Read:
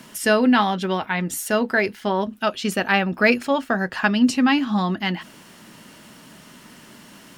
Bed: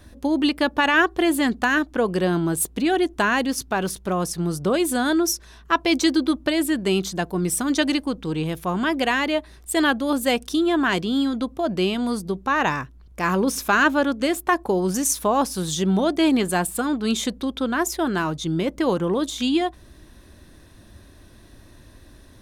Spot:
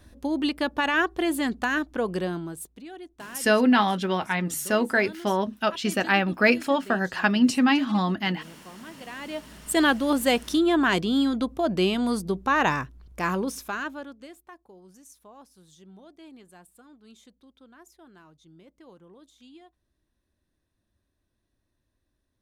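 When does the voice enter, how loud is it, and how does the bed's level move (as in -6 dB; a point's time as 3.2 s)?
3.20 s, -2.5 dB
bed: 2.17 s -5.5 dB
2.86 s -21.5 dB
9.01 s -21.5 dB
9.68 s -1 dB
13.1 s -1 dB
14.62 s -29.5 dB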